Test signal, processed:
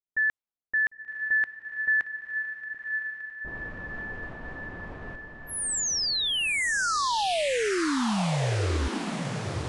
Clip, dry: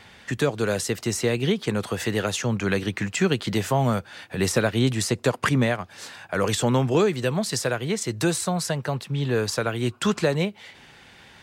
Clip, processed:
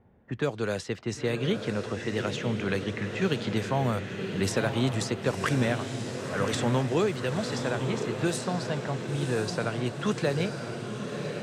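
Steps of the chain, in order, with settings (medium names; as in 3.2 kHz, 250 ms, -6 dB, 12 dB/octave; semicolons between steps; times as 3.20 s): level-controlled noise filter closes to 450 Hz, open at -18 dBFS; echo that smears into a reverb 1016 ms, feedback 57%, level -6 dB; trim -5.5 dB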